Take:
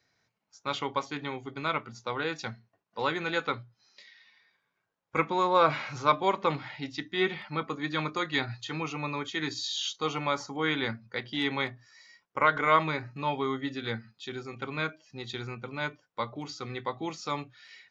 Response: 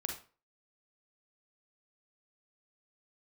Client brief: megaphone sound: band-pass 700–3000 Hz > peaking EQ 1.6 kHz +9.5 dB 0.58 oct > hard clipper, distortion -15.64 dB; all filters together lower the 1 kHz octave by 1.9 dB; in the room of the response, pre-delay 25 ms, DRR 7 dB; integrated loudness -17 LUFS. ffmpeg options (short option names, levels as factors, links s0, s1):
-filter_complex "[0:a]equalizer=f=1000:t=o:g=-5,asplit=2[s0][s1];[1:a]atrim=start_sample=2205,adelay=25[s2];[s1][s2]afir=irnorm=-1:irlink=0,volume=0.398[s3];[s0][s3]amix=inputs=2:normalize=0,highpass=700,lowpass=3000,equalizer=f=1600:t=o:w=0.58:g=9.5,asoftclip=type=hard:threshold=0.133,volume=5.31"